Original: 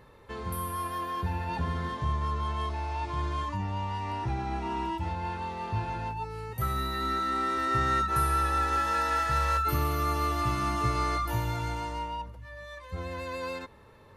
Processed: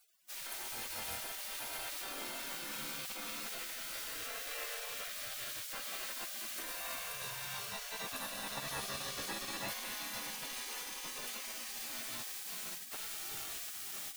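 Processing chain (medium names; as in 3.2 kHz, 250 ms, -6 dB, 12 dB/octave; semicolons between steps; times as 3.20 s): added noise white -50 dBFS; peak limiter -25.5 dBFS, peak gain reduction 10 dB; two-band feedback delay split 400 Hz, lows 106 ms, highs 531 ms, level -4.5 dB; spectral gate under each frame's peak -25 dB weak; trim +5 dB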